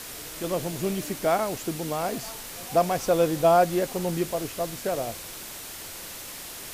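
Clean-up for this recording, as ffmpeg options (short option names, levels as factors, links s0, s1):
-af "afwtdn=0.013"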